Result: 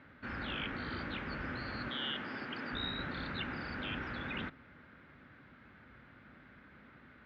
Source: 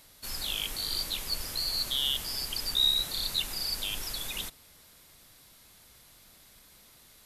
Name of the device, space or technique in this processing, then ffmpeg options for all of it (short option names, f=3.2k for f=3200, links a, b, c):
bass cabinet: -filter_complex "[0:a]asettb=1/sr,asplit=3[a][b][c];[a]atrim=end=1.884[d];[b]atrim=start=1.88:end=2.73,asetpts=PTS-STARTPTS,afade=t=in:d=0.004:c=qsin,afade=t=out:st=0.846:d=0.004:c=qsin,highpass=190[e];[c]atrim=start=2.726[f];[d][e]acrossfade=d=0.004:c1=hsin:c2=qsin[g];[g][f]acrossfade=d=0.004:c1=qsin:c2=hsin,highpass=f=60:w=0.5412,highpass=f=60:w=1.3066,equalizer=f=82:t=q:w=4:g=-4,equalizer=f=250:t=q:w=4:g=7,equalizer=f=450:t=q:w=4:g=-4,equalizer=f=690:t=q:w=4:g=-7,equalizer=f=990:t=q:w=4:g=-6,equalizer=f=1.5k:t=q:w=4:g=6,lowpass=f=2k:w=0.5412,lowpass=f=2k:w=1.3066,volume=6dB"